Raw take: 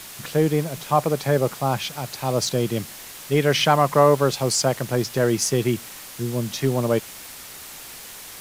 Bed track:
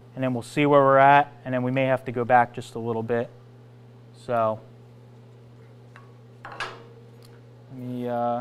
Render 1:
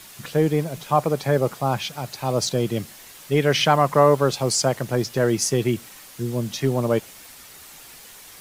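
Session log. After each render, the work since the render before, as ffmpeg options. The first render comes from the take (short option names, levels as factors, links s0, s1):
-af "afftdn=nr=6:nf=-40"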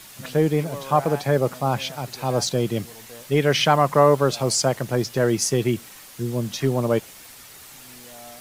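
-filter_complex "[1:a]volume=0.112[s0];[0:a][s0]amix=inputs=2:normalize=0"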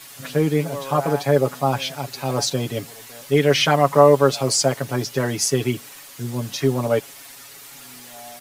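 -af "lowshelf=f=130:g=-9.5,aecho=1:1:7.2:0.88"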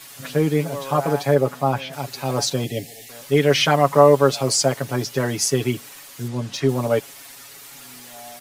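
-filter_complex "[0:a]asettb=1/sr,asplit=3[s0][s1][s2];[s0]atrim=end=1.344[s3];[s1]atrim=start=1.34:end=1.93,asetpts=PTS-STARTPTS,afade=t=in:d=0.004:c=qsin,afade=t=out:st=0.586:d=0.004:c=qsin,acrossover=split=2700[s4][s5];[s5]acompressor=threshold=0.00794:ratio=4:attack=1:release=60[s6];[s4][s6]amix=inputs=2:normalize=0[s7];[s2]atrim=start=1.926[s8];[s3][s7]acrossfade=d=0.004:c1=hsin:c2=qsin[s9];[s9][s8]acrossfade=d=0.004:c1=qsin:c2=hsin,asettb=1/sr,asplit=3[s10][s11][s12];[s10]atrim=end=2.644[s13];[s11]atrim=start=2.64:end=3.09,asetpts=PTS-STARTPTS,afade=t=in:d=0.004:c=qsin,afade=t=out:st=0.446:d=0.004:c=qsin,asuperstop=centerf=1200:order=12:qfactor=1.3[s14];[s12]atrim=start=3.086[s15];[s13][s14]acrossfade=d=0.004:c1=hsin:c2=qsin[s16];[s16][s15]acrossfade=d=0.004:c1=qsin:c2=hsin,asettb=1/sr,asplit=3[s17][s18][s19];[s17]atrim=end=6.284[s20];[s18]atrim=start=6.28:end=6.69,asetpts=PTS-STARTPTS,afade=t=in:d=0.004:c=qsin,afade=t=out:st=0.406:d=0.004:c=qsin,adynamicsmooth=sensitivity=4.5:basefreq=6800[s21];[s19]atrim=start=6.686[s22];[s20][s21]acrossfade=d=0.004:c1=hsin:c2=qsin[s23];[s23][s22]acrossfade=d=0.004:c1=qsin:c2=hsin"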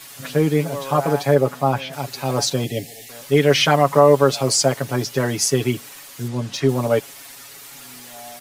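-af "volume=1.19,alimiter=limit=0.708:level=0:latency=1"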